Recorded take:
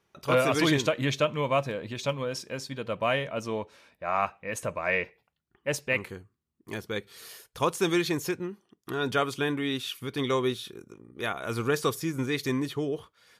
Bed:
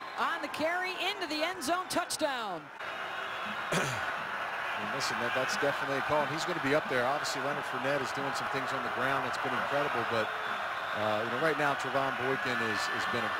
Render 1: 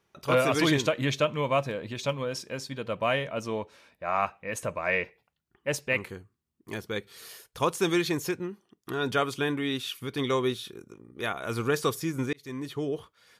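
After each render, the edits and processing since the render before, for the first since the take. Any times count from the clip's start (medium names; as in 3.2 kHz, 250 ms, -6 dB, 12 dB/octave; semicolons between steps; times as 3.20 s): 12.33–12.89 s: fade in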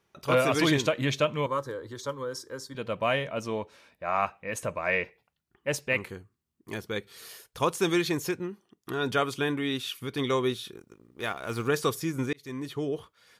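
1.46–2.75 s: static phaser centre 690 Hz, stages 6; 10.76–11.68 s: companding laws mixed up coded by A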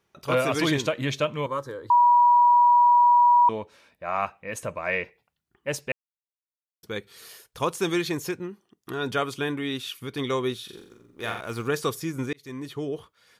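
1.90–3.49 s: bleep 966 Hz -13.5 dBFS; 5.92–6.83 s: mute; 10.64–11.41 s: flutter echo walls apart 7.6 m, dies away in 0.58 s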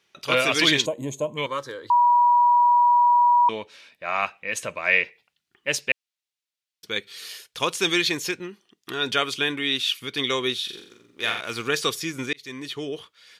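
0.85–1.38 s: time-frequency box 1.1–6.3 kHz -25 dB; frequency weighting D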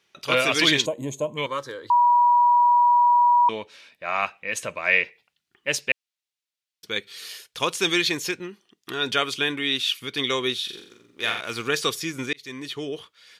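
no audible change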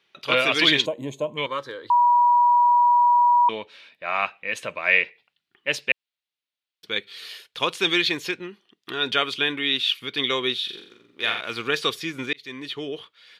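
high-pass 130 Hz 6 dB/octave; resonant high shelf 4.9 kHz -7.5 dB, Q 1.5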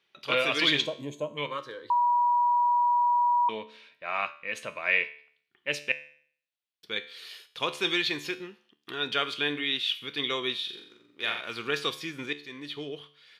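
feedback comb 73 Hz, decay 0.54 s, harmonics all, mix 60%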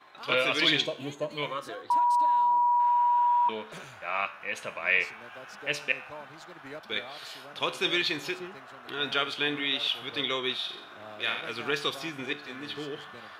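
add bed -14 dB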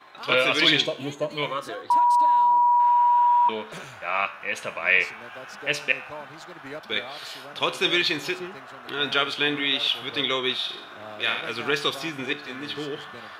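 trim +5 dB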